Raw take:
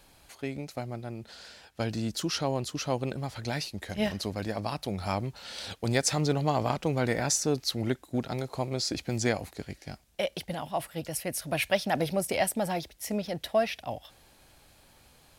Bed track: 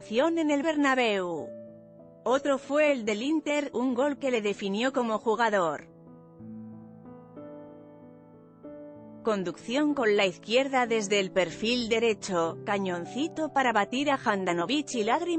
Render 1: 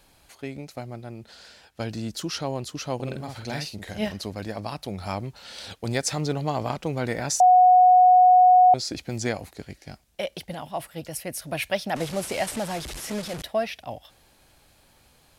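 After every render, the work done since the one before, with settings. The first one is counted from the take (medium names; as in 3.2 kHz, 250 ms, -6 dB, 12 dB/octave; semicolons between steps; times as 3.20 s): 2.95–4.05 s: doubling 47 ms -4.5 dB; 7.40–8.74 s: bleep 732 Hz -11 dBFS; 11.96–13.42 s: one-bit delta coder 64 kbps, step -29.5 dBFS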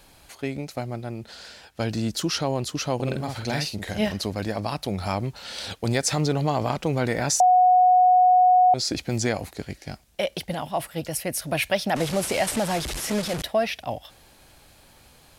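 in parallel at -1.5 dB: peak limiter -21.5 dBFS, peak gain reduction 10.5 dB; on the sum: compression 2.5:1, threshold -16 dBFS, peak gain reduction 3.5 dB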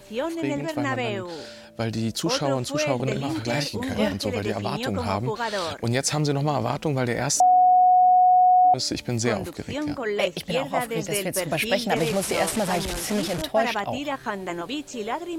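add bed track -3 dB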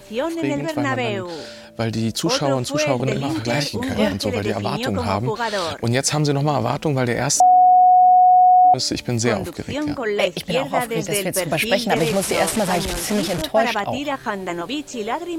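trim +4.5 dB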